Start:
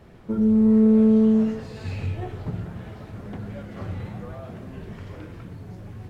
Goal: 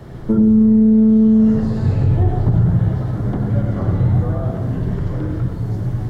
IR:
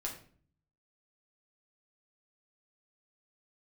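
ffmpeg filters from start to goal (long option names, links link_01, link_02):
-filter_complex "[0:a]equalizer=frequency=125:width_type=o:width=0.33:gain=10,equalizer=frequency=315:width_type=o:width=0.33:gain=3,equalizer=frequency=2500:width_type=o:width=0.33:gain=-10,acrossover=split=350|1300[link_01][link_02][link_03];[link_01]acompressor=threshold=-19dB:ratio=4[link_04];[link_02]acompressor=threshold=-35dB:ratio=4[link_05];[link_03]acompressor=threshold=-60dB:ratio=4[link_06];[link_04][link_05][link_06]amix=inputs=3:normalize=0,asplit=2[link_07][link_08];[1:a]atrim=start_sample=2205,lowshelf=frequency=130:gain=10,adelay=91[link_09];[link_08][link_09]afir=irnorm=-1:irlink=0,volume=-6dB[link_10];[link_07][link_10]amix=inputs=2:normalize=0,alimiter=level_in=16.5dB:limit=-1dB:release=50:level=0:latency=1,volume=-5.5dB"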